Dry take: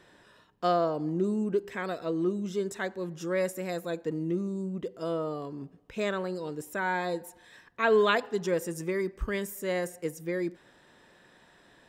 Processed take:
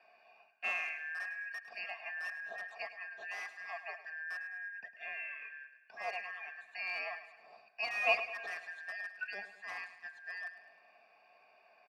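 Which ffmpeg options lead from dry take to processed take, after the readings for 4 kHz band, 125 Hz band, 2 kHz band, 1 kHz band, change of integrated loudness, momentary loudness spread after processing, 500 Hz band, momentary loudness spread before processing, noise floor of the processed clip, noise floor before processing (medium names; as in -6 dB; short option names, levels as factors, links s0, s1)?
-6.0 dB, under -35 dB, -0.5 dB, -11.0 dB, -8.5 dB, 11 LU, -18.5 dB, 10 LU, -66 dBFS, -60 dBFS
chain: -filter_complex "[0:a]afftfilt=real='real(if(lt(b,272),68*(eq(floor(b/68),0)*2+eq(floor(b/68),1)*0+eq(floor(b/68),2)*3+eq(floor(b/68),3)*1)+mod(b,68),b),0)':imag='imag(if(lt(b,272),68*(eq(floor(b/68),0)*2+eq(floor(b/68),1)*0+eq(floor(b/68),2)*3+eq(floor(b/68),3)*1)+mod(b,68),b),0)':win_size=2048:overlap=0.75,lowpass=8300,aemphasis=mode=reproduction:type=75kf,bandreject=f=50:t=h:w=6,bandreject=f=100:t=h:w=6,bandreject=f=150:t=h:w=6,aecho=1:1:4.4:0.47,acrossover=split=160[s0][s1];[s0]dynaudnorm=f=350:g=11:m=2[s2];[s2][s1]amix=inputs=2:normalize=0,afreqshift=-23,asplit=2[s3][s4];[s4]aeval=exprs='(mod(15*val(0)+1,2)-1)/15':c=same,volume=0.282[s5];[s3][s5]amix=inputs=2:normalize=0,asplit=3[s6][s7][s8];[s6]bandpass=f=730:t=q:w=8,volume=1[s9];[s7]bandpass=f=1090:t=q:w=8,volume=0.501[s10];[s8]bandpass=f=2440:t=q:w=8,volume=0.355[s11];[s9][s10][s11]amix=inputs=3:normalize=0,aecho=1:1:104|208|312|416|520|624:0.211|0.116|0.0639|0.0352|0.0193|0.0106,volume=2.82"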